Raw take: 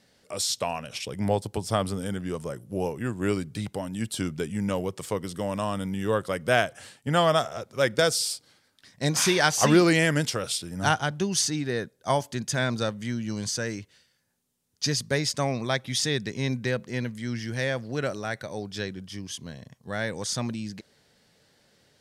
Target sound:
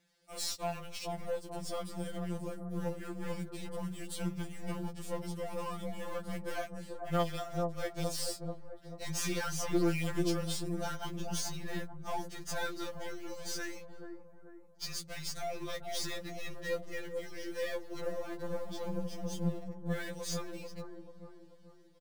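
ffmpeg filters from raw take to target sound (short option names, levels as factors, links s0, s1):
-filter_complex "[0:a]asettb=1/sr,asplit=3[s0][s1][s2];[s0]atrim=end=18.004[s3];[s1]atrim=start=18:end=19.59,asetpts=PTS-STARTPTS,afade=t=in:d=0.004:c=qsin,afade=t=out:st=1.586:d=0.004:c=qsin,lowshelf=f=710:t=q:w=1.5:g=14[s4];[s2]atrim=start=19.586[s5];[s3][s4]acrossfade=d=0.004:c1=hsin:c2=qsin[s6];[s6][s5]acrossfade=d=0.004:c1=qsin:c2=hsin,alimiter=limit=0.178:level=0:latency=1:release=194,asplit=2[s7][s8];[s8]acrusher=bits=5:mix=0:aa=0.000001,volume=0.316[s9];[s7][s9]amix=inputs=2:normalize=0,aeval=exprs='(tanh(12.6*val(0)+0.45)-tanh(0.45))/12.6':c=same,acrossover=split=1200[s10][s11];[s10]aecho=1:1:438|876|1314|1752|2190|2628:0.708|0.311|0.137|0.0603|0.0265|0.0117[s12];[s11]acrusher=bits=2:mode=log:mix=0:aa=0.000001[s13];[s12][s13]amix=inputs=2:normalize=0,afftfilt=real='re*2.83*eq(mod(b,8),0)':imag='im*2.83*eq(mod(b,8),0)':win_size=2048:overlap=0.75,volume=0.422"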